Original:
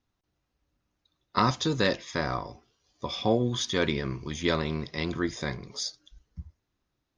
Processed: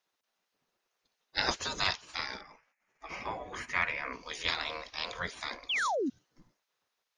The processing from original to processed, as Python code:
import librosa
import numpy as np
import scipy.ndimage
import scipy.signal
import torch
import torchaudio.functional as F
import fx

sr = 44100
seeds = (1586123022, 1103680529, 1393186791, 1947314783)

y = fx.spec_gate(x, sr, threshold_db=-15, keep='weak')
y = fx.high_shelf_res(y, sr, hz=2800.0, db=-8.5, q=3.0, at=(2.41, 4.13))
y = fx.spec_paint(y, sr, seeds[0], shape='fall', start_s=5.69, length_s=0.41, low_hz=230.0, high_hz=3600.0, level_db=-34.0)
y = F.gain(torch.from_numpy(y), 3.5).numpy()